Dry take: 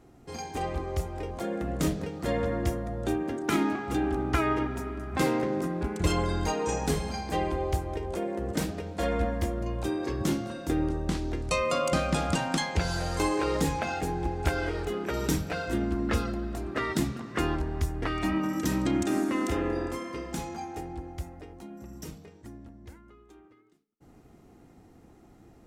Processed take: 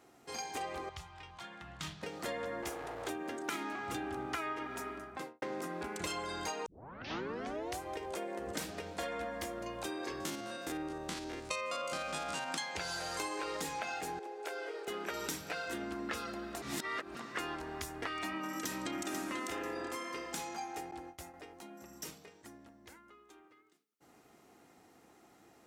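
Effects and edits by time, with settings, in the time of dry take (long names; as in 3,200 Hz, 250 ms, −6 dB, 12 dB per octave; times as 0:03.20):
0:00.89–0:02.03: drawn EQ curve 150 Hz 0 dB, 240 Hz −17 dB, 340 Hz −17 dB, 500 Hz −26 dB, 890 Hz −6 dB, 2,100 Hz −7 dB, 3,300 Hz −2 dB, 6,000 Hz −10 dB, 13,000 Hz −21 dB
0:02.62–0:03.10: lower of the sound and its delayed copy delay 2.4 ms
0:03.76–0:04.26: parametric band 99 Hz +14.5 dB
0:04.86–0:05.42: fade out and dull
0:06.66: tape start 1.15 s
0:08.47–0:09.03: low-shelf EQ 91 Hz +11 dB
0:10.20–0:12.49: spectrum averaged block by block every 50 ms
0:14.19–0:14.88: four-pole ladder high-pass 380 Hz, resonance 60%
0:16.62–0:17.15: reverse
0:18.43–0:18.90: delay throw 490 ms, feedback 25%, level −5.5 dB
0:20.91–0:21.34: noise gate with hold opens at −31 dBFS, closes at −36 dBFS
whole clip: high-pass filter 1,000 Hz 6 dB per octave; downward compressor 4 to 1, threshold −39 dBFS; level +2.5 dB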